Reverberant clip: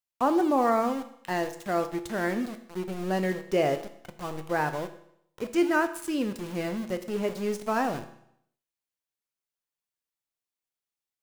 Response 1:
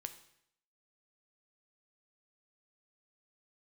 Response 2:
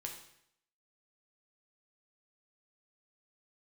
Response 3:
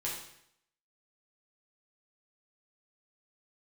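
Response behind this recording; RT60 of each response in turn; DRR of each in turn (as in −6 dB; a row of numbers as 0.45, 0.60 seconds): 1; 0.70, 0.70, 0.70 seconds; 8.0, 1.0, −5.5 decibels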